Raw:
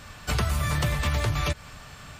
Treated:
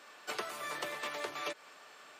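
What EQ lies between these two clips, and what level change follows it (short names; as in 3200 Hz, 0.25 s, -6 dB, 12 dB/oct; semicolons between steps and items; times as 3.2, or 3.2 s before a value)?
ladder high-pass 300 Hz, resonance 40%; low shelf 430 Hz -8 dB; high shelf 4600 Hz -5.5 dB; +1.0 dB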